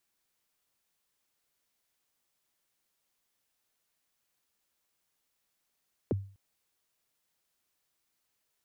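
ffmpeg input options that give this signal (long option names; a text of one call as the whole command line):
ffmpeg -f lavfi -i "aevalsrc='0.0708*pow(10,-3*t/0.41)*sin(2*PI*(550*0.022/log(98/550)*(exp(log(98/550)*min(t,0.022)/0.022)-1)+98*max(t-0.022,0)))':duration=0.25:sample_rate=44100" out.wav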